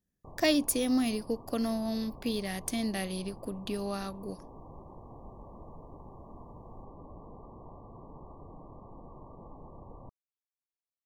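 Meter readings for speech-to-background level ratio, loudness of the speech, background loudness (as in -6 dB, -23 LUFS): 18.5 dB, -32.0 LUFS, -50.5 LUFS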